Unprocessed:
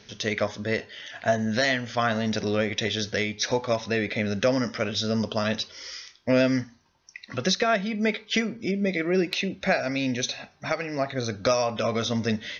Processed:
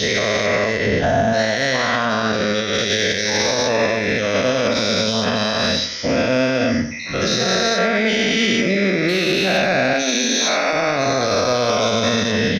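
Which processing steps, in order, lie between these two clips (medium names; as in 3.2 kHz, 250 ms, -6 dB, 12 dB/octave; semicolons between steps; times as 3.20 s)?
every event in the spectrogram widened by 480 ms; 0.86–1.33 s: bass shelf 480 Hz +10.5 dB; 9.93–10.73 s: steep high-pass 190 Hz 48 dB/octave; peak limiter -12.5 dBFS, peak gain reduction 10.5 dB; in parallel at -5 dB: saturation -14 dBFS, distortion -21 dB; 2.05–2.74 s: on the sum: distance through air 63 m; on a send: feedback delay 90 ms, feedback 33%, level -11 dB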